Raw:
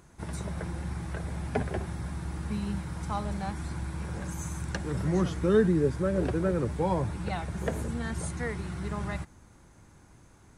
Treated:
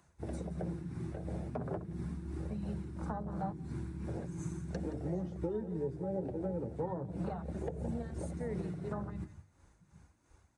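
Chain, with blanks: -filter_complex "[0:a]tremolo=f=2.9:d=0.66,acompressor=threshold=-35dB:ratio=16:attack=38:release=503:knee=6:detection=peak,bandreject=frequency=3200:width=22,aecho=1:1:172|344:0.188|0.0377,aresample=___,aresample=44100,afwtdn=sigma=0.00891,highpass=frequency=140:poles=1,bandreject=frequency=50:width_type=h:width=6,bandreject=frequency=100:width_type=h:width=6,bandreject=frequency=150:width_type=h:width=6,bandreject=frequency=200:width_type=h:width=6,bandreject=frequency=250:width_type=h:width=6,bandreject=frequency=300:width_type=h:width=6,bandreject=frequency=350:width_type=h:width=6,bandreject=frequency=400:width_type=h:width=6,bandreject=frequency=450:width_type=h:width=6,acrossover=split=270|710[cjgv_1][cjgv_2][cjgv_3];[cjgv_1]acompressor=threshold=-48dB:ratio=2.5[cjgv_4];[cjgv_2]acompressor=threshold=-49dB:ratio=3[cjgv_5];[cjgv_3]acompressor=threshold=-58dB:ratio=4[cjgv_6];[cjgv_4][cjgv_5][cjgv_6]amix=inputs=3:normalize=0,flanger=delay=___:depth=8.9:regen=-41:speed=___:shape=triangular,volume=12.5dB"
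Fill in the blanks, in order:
22050, 1, 0.38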